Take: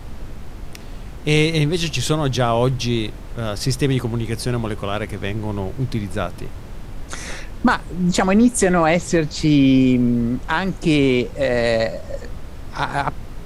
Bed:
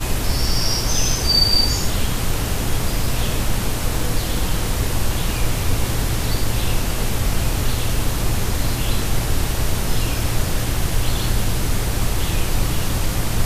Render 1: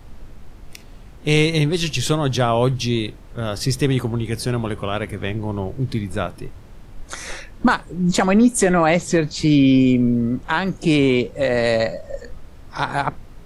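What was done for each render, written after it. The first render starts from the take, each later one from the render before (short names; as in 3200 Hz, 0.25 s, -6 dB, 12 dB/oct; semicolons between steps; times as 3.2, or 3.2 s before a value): noise print and reduce 8 dB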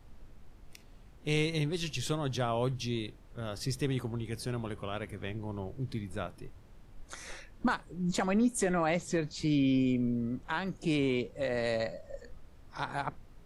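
gain -13.5 dB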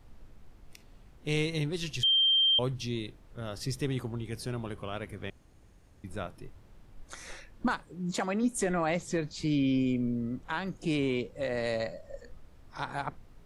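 2.03–2.59 bleep 3160 Hz -21 dBFS; 5.3–6.04 room tone; 7.84–8.42 HPF 94 Hz -> 290 Hz 6 dB/oct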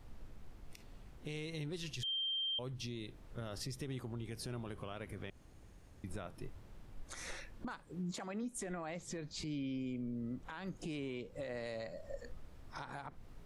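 compressor 6:1, threshold -38 dBFS, peak gain reduction 13.5 dB; limiter -33.5 dBFS, peak gain reduction 10 dB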